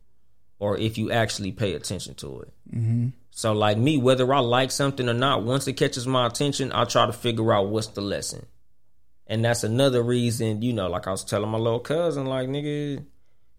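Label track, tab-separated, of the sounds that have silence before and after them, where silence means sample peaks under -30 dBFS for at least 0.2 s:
0.620000	2.430000	sound
2.730000	3.100000	sound
3.380000	8.390000	sound
9.310000	13.000000	sound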